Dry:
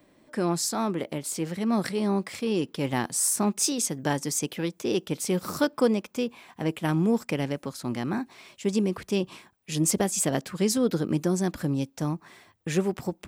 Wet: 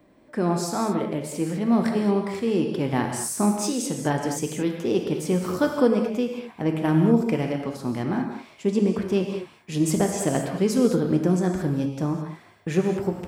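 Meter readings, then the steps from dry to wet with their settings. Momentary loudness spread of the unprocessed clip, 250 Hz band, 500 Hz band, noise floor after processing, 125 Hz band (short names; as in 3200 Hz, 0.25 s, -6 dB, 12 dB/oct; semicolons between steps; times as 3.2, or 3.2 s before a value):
8 LU, +4.5 dB, +4.0 dB, -52 dBFS, +4.0 dB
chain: high shelf 2300 Hz -10 dB; non-linear reverb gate 0.24 s flat, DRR 2.5 dB; gain +3 dB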